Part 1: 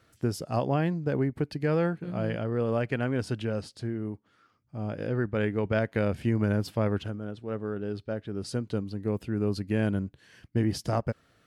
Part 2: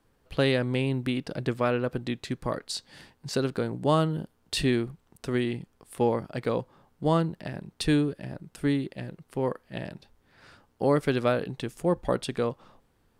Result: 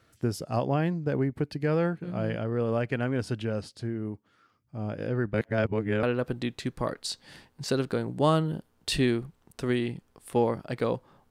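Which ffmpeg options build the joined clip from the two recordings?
-filter_complex "[0:a]apad=whole_dur=11.3,atrim=end=11.3,asplit=2[a][b];[a]atrim=end=5.342[c];[b]atrim=start=5.338:end=6.032,asetpts=PTS-STARTPTS,areverse[d];[1:a]atrim=start=1.678:end=6.95[e];[c][d]acrossfade=d=0.004:c1=hsin:c2=hsin[f];[f][e]acrossfade=d=0.004:c1=hsin:c2=hsin"

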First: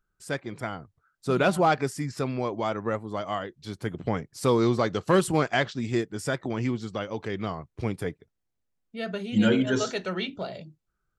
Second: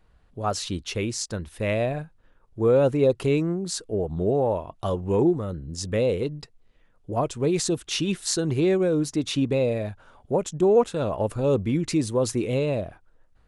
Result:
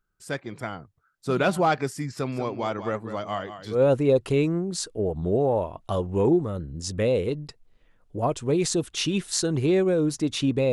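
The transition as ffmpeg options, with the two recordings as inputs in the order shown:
-filter_complex "[0:a]asettb=1/sr,asplit=3[a][b][c];[a]atrim=end=2.134[d];[b]atrim=start=2.13:end=3.82,asetpts=PTS-STARTPTS,afade=t=in:d=0.004:c=qsin,afade=t=out:st=1.686:d=0.004:c=qsin,aecho=1:1:192:0.299,atrim=end_sample=74529[e];[c]atrim=start=3.816[f];[d][e]acrossfade=d=0.004:c1=hsin:c2=qsin[g];[g][f]acrossfade=d=0.004:c1=qsin:c2=hsin,apad=whole_dur=10.72,atrim=end=10.72,atrim=end=3.82,asetpts=PTS-STARTPTS[h];[1:a]atrim=start=2.64:end=9.66,asetpts=PTS-STARTPTS[i];[h][i]acrossfade=d=0.12:c1=tri:c2=tri"

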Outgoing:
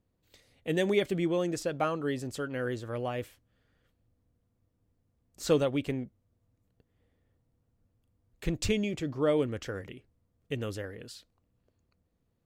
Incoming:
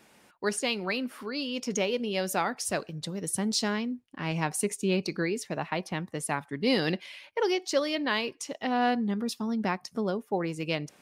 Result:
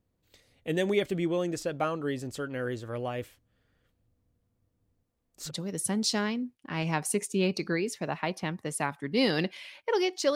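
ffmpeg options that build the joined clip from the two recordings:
-filter_complex "[0:a]asettb=1/sr,asplit=3[a][b][c];[a]atrim=end=5.044[d];[b]atrim=start=5.04:end=5.51,asetpts=PTS-STARTPTS,afade=t=in:d=0.004:c=qsin,afade=t=out:st=0.466:d=0.004:c=qsin,equalizer=f=100:w=0.62:g=-11[e];[c]atrim=start=5.506[f];[d][e]acrossfade=d=0.004:c1=hsin:c2=qsin[g];[g][f]acrossfade=d=0.004:c1=qsin:c2=hsin,apad=whole_dur=10.35,atrim=end=10.35,atrim=end=5.51,asetpts=PTS-STARTPTS[h];[1:a]atrim=start=2.94:end=7.84,asetpts=PTS-STARTPTS[i];[h][i]acrossfade=d=0.06:c1=tri:c2=tri"

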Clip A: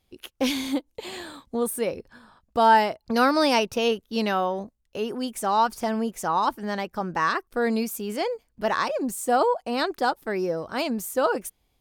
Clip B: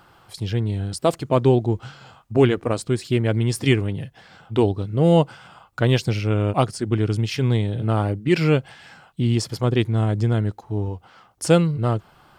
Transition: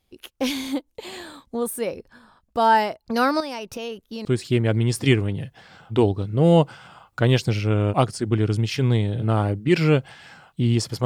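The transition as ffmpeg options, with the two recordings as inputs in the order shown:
-filter_complex "[0:a]asettb=1/sr,asplit=3[a][b][c];[a]atrim=end=3.404[d];[b]atrim=start=3.4:end=4.25,asetpts=PTS-STARTPTS,afade=t=in:d=0.004:c=qsin,afade=t=out:st=0.846:d=0.004:c=qsin,acompressor=threshold=-29dB:ratio=4:attack=3.2:release=140:knee=1:detection=peak[e];[c]atrim=start=4.246[f];[d][e]acrossfade=d=0.004:c1=hsin:c2=qsin[g];[g][f]acrossfade=d=0.004:c1=qsin:c2=hsin,apad=whole_dur=11.05,atrim=end=11.05,atrim=end=4.252[h];[1:a]atrim=start=2.848:end=9.65[i];[h][i]acrossfade=d=0.004:c1=hsin:c2=hsin"

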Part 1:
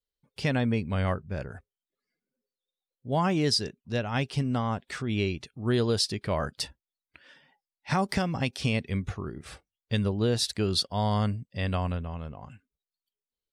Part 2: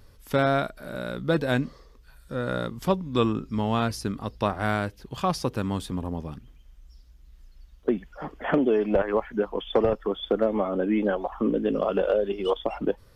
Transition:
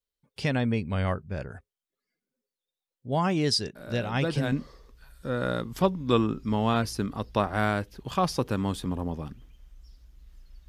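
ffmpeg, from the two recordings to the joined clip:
-filter_complex "[1:a]asplit=2[a][b];[0:a]apad=whole_dur=10.68,atrim=end=10.68,atrim=end=4.522[c];[b]atrim=start=1.578:end=7.74[d];[a]atrim=start=0.81:end=1.58,asetpts=PTS-STARTPTS,volume=-6.5dB,afade=t=in:d=0.004:c=hsin,afade=t=out:st=0.766:d=0.004:c=hsin,adelay=3750[e];[c][d]acrossfade=d=0.004:c1=hsin:c2=hsin[f];[f][e]amix=inputs=2:normalize=0"

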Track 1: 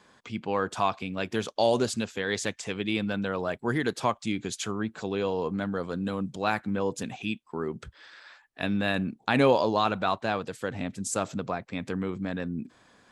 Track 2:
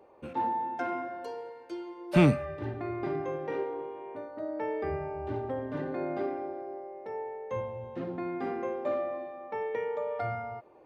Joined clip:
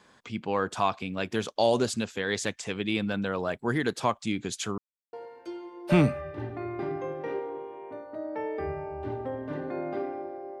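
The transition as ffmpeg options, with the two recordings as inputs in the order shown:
-filter_complex "[0:a]apad=whole_dur=10.6,atrim=end=10.6,asplit=2[a][b];[a]atrim=end=4.78,asetpts=PTS-STARTPTS,afade=t=out:st=4.776:d=0.004:c=hsin[c];[b]atrim=start=4.78:end=5.13,asetpts=PTS-STARTPTS,volume=0[d];[1:a]atrim=start=1.37:end=6.84,asetpts=PTS-STARTPTS,afade=t=in:d=0.004:c=hsin[e];[c][d][e]concat=n=3:v=0:a=1"

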